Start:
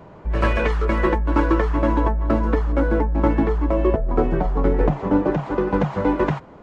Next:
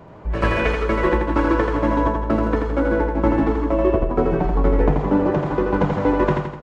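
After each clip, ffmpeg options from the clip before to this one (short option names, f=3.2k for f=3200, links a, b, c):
-af "aecho=1:1:83|166|249|332|415|498:0.631|0.315|0.158|0.0789|0.0394|0.0197"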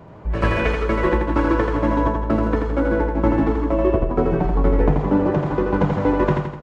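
-af "equalizer=f=110:w=0.69:g=3.5,volume=-1dB"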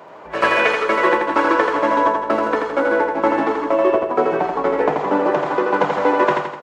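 -af "highpass=550,volume=8dB"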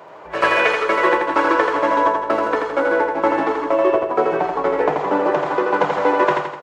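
-af "equalizer=f=230:t=o:w=0.39:g=-8"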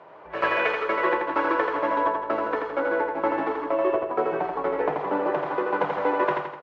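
-af "lowpass=3.3k,volume=-7dB"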